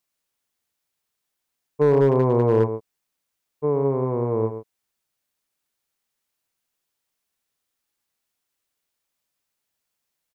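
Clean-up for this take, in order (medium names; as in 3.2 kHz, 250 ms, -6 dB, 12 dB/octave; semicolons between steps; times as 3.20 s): clip repair -10 dBFS; inverse comb 116 ms -9.5 dB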